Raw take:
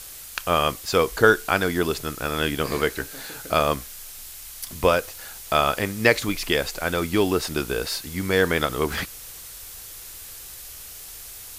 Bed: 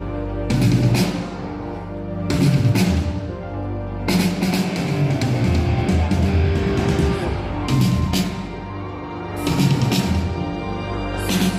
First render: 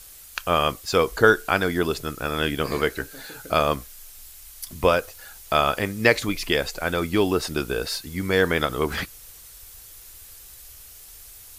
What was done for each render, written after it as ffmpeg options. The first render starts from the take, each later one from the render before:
-af "afftdn=nr=7:nf=-40"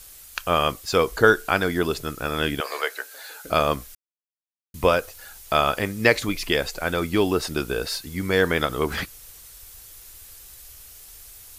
-filter_complex "[0:a]asettb=1/sr,asplit=3[a][b][c];[a]atrim=end=2.604[d];[b]atrim=start=2.6:end=3.45,asetpts=PTS-STARTPTS,afade=t=in:d=0.004:c=qsin,afade=t=out:st=0.846:d=0.004:c=qsin,highpass=f=540:w=0.5412,highpass=f=540:w=1.3066[e];[c]atrim=start=3.446[f];[d][e]acrossfade=d=0.004:c1=hsin:c2=qsin[g];[g][f]acrossfade=d=0.004:c1=qsin:c2=hsin,asplit=3[h][i][j];[h]atrim=end=3.95,asetpts=PTS-STARTPTS,afade=t=out:st=3.946:d=0.004:c=hsin[k];[i]atrim=start=3.95:end=4.74,asetpts=PTS-STARTPTS,volume=0[l];[j]atrim=start=4.74,asetpts=PTS-STARTPTS,afade=t=in:d=0.004:c=hsin[m];[k][l][m]concat=n=3:v=0:a=1"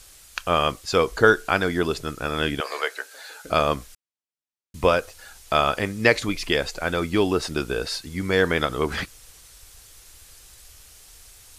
-af "lowpass=9.4k"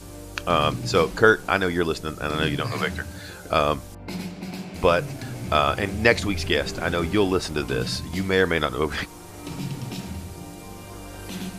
-filter_complex "[1:a]volume=-14.5dB[a];[0:a][a]amix=inputs=2:normalize=0"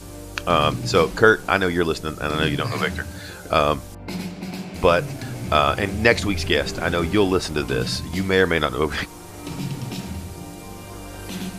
-af "volume=2.5dB,alimiter=limit=-2dB:level=0:latency=1"

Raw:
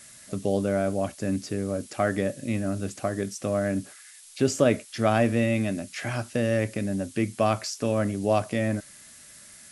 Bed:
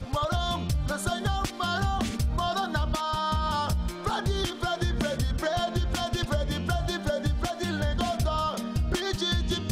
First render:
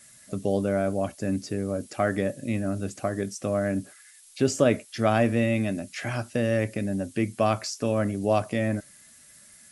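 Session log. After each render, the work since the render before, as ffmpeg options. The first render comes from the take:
-af "afftdn=nr=6:nf=-49"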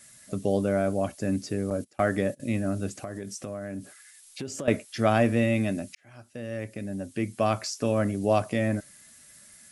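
-filter_complex "[0:a]asettb=1/sr,asplit=3[a][b][c];[a]atrim=end=1.704[d];[b]atrim=start=1.7:end=2.4,asetpts=PTS-STARTPTS,afade=t=in:d=0.004:c=qsin,afade=t=out:st=0.696:d=0.004:c=qsin,agate=range=-20dB:threshold=-38dB:ratio=16:release=100:detection=peak[e];[c]atrim=start=2.396[f];[d][e]acrossfade=d=0.004:c1=hsin:c2=qsin[g];[g][f]acrossfade=d=0.004:c1=qsin:c2=hsin,asettb=1/sr,asplit=3[h][i][j];[h]atrim=end=2.984[k];[i]atrim=start=2.98:end=4.68,asetpts=PTS-STARTPTS,afade=t=in:d=0.004:c=qsin,afade=t=out:st=1.696:d=0.004:c=qsin,acompressor=threshold=-32dB:ratio=5:attack=3.2:release=140:knee=1:detection=peak[l];[j]atrim=start=4.676[m];[k][l]acrossfade=d=0.004:c1=hsin:c2=qsin[n];[n][m]acrossfade=d=0.004:c1=qsin:c2=hsin,asplit=2[o][p];[o]atrim=end=5.95,asetpts=PTS-STARTPTS,afade=t=out:st=5.946:d=0.004:c=hsin[q];[p]atrim=start=5.95,asetpts=PTS-STARTPTS,afade=t=in:d=1.82[r];[q][r]concat=n=2:v=0:a=1"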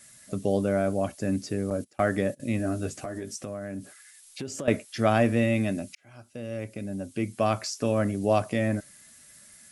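-filter_complex "[0:a]asettb=1/sr,asplit=3[a][b][c];[a]atrim=end=2.584[d];[b]atrim=start=2.58:end=3.36,asetpts=PTS-STARTPTS,afade=t=in:d=0.004:c=qsin,afade=t=out:st=0.776:d=0.004:c=qsin,asplit=2[e][f];[f]adelay=13,volume=-4dB[g];[e][g]amix=inputs=2:normalize=0,atrim=end_sample=34398[h];[c]atrim=start=3.356[i];[d][h]acrossfade=d=0.004:c1=hsin:c2=qsin[j];[j][i]acrossfade=d=0.004:c1=qsin:c2=hsin,asettb=1/sr,asplit=3[k][l][m];[k]atrim=end=5.794[n];[l]atrim=start=5.79:end=7.32,asetpts=PTS-STARTPTS,afade=t=in:d=0.004:c=qsin,afade=t=out:st=1.526:d=0.004:c=qsin,bandreject=f=1.8k:w=7.9[o];[m]atrim=start=7.316[p];[n][o]acrossfade=d=0.004:c1=hsin:c2=qsin[q];[q][p]acrossfade=d=0.004:c1=qsin:c2=hsin"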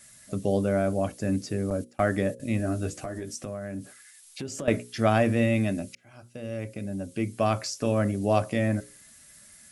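-af "lowshelf=f=72:g=8,bandreject=f=60:t=h:w=6,bandreject=f=120:t=h:w=6,bandreject=f=180:t=h:w=6,bandreject=f=240:t=h:w=6,bandreject=f=300:t=h:w=6,bandreject=f=360:t=h:w=6,bandreject=f=420:t=h:w=6,bandreject=f=480:t=h:w=6,bandreject=f=540:t=h:w=6"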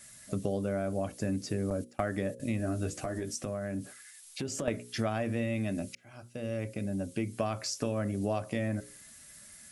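-af "acompressor=threshold=-28dB:ratio=6"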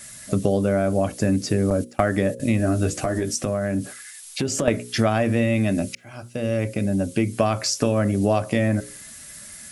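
-af "volume=11.5dB"

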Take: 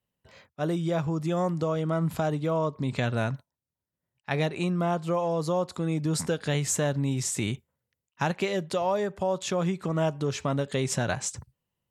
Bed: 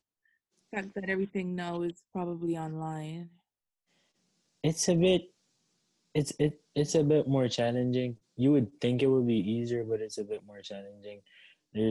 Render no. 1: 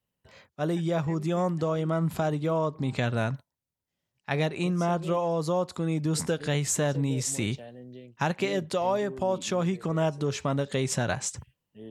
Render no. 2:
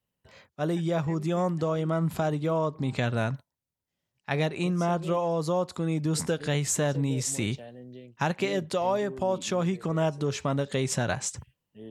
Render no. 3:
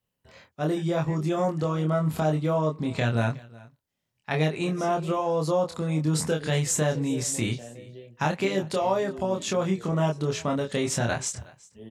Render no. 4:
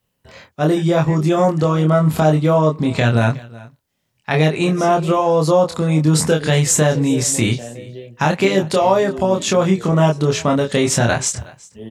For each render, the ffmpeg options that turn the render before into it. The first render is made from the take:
-filter_complex "[1:a]volume=-16dB[a];[0:a][a]amix=inputs=2:normalize=0"
-af anull
-filter_complex "[0:a]asplit=2[a][b];[b]adelay=26,volume=-3dB[c];[a][c]amix=inputs=2:normalize=0,aecho=1:1:368:0.075"
-af "volume=10.5dB,alimiter=limit=-3dB:level=0:latency=1"

